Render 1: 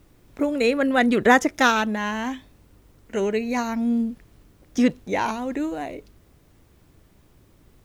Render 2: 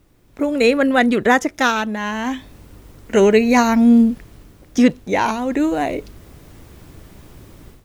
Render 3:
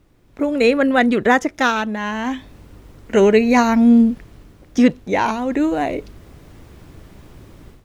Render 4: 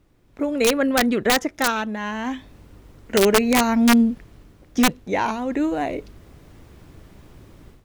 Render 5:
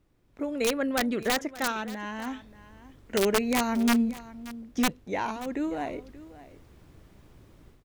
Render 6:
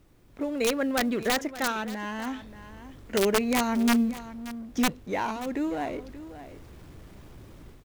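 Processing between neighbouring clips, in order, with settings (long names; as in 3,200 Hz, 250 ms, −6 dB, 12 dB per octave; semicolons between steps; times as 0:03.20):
automatic gain control gain up to 15 dB; level −1 dB
high-shelf EQ 6,700 Hz −8 dB
wrap-around overflow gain 5 dB; level −4 dB
single-tap delay 580 ms −17.5 dB; level −8 dB
mu-law and A-law mismatch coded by mu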